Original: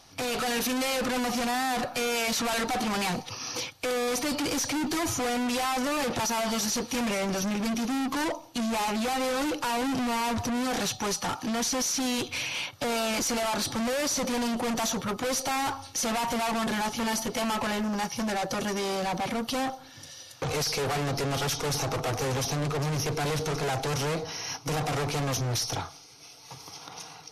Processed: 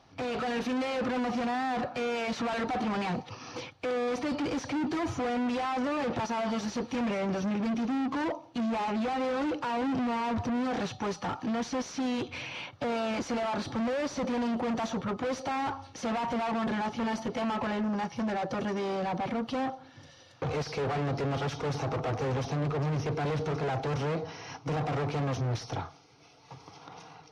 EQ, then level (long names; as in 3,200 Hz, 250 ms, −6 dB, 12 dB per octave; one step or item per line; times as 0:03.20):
high-pass filter 53 Hz
head-to-tape spacing loss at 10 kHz 27 dB
0.0 dB